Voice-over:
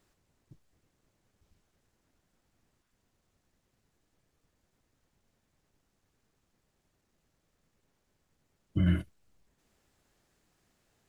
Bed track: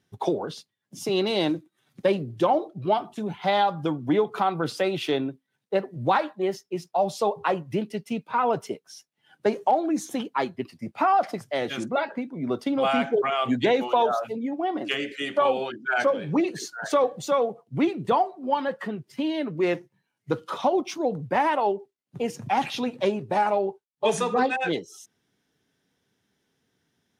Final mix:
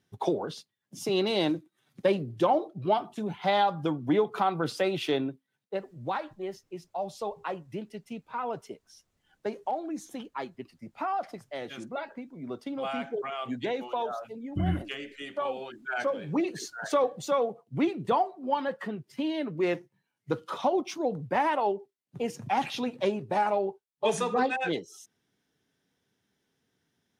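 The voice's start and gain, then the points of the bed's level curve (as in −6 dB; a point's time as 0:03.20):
5.80 s, −2.0 dB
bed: 0:05.46 −2.5 dB
0:05.82 −10 dB
0:15.60 −10 dB
0:16.56 −3.5 dB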